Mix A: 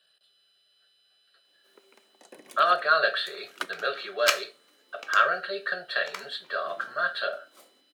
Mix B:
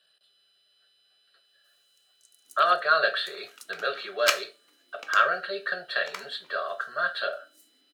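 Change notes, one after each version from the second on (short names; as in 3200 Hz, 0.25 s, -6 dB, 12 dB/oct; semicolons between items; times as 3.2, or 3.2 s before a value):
first sound: add inverse Chebyshev high-pass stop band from 2800 Hz, stop band 40 dB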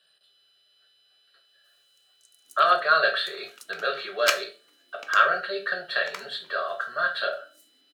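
speech: send +9.5 dB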